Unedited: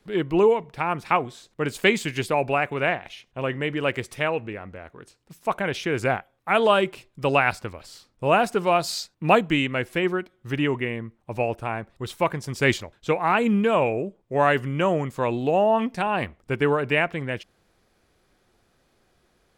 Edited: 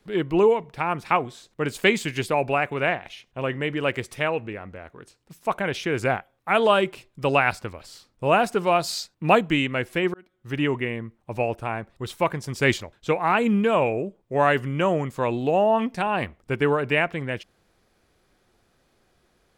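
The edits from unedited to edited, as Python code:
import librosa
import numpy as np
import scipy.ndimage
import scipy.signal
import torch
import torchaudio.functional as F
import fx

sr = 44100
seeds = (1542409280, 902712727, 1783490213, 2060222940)

y = fx.edit(x, sr, fx.fade_in_span(start_s=10.14, length_s=0.49), tone=tone)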